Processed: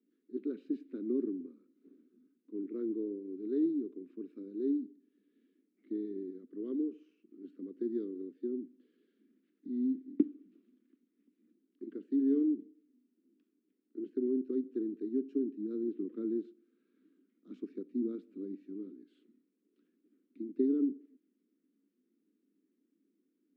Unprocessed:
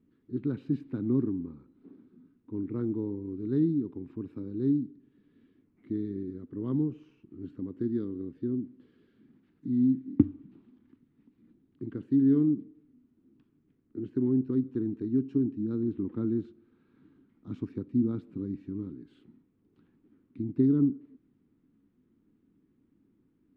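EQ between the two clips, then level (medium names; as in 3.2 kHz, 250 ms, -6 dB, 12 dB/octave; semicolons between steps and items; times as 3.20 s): elliptic high-pass 180 Hz; dynamic bell 400 Hz, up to +6 dB, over -43 dBFS, Q 2.1; static phaser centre 360 Hz, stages 4; -6.0 dB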